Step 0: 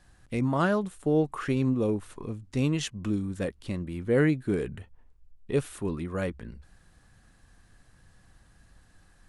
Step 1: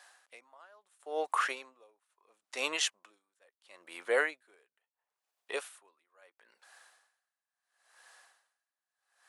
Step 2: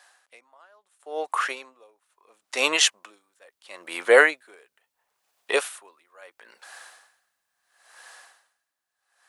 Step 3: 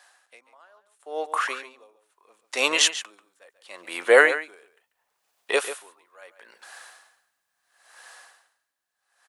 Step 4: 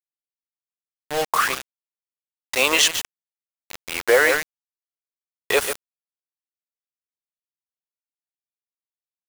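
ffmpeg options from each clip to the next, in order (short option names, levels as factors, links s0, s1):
-af "highpass=f=640:w=0.5412,highpass=f=640:w=1.3066,aeval=exprs='val(0)*pow(10,-36*(0.5-0.5*cos(2*PI*0.74*n/s))/20)':c=same,volume=2.37"
-af "dynaudnorm=f=660:g=7:m=4.47,volume=1.26"
-filter_complex "[0:a]asplit=2[s0][s1];[s1]adelay=139.9,volume=0.251,highshelf=f=4000:g=-3.15[s2];[s0][s2]amix=inputs=2:normalize=0"
-af "alimiter=limit=0.266:level=0:latency=1:release=38,acrusher=bits=4:mix=0:aa=0.000001,volume=1.88"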